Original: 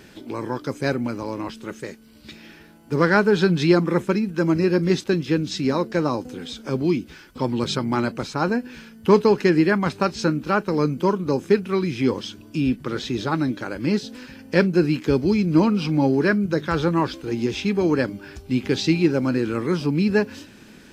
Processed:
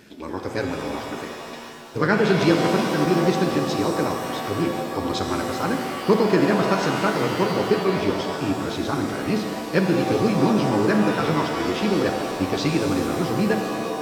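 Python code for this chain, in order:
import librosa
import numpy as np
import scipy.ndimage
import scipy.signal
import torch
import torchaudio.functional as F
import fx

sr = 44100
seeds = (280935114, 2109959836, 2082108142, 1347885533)

y = fx.low_shelf(x, sr, hz=62.0, db=-9.0)
y = fx.stretch_grains(y, sr, factor=0.67, grain_ms=21.0)
y = fx.rev_shimmer(y, sr, seeds[0], rt60_s=2.2, semitones=7, shimmer_db=-2, drr_db=4.0)
y = F.gain(torch.from_numpy(y), -1.5).numpy()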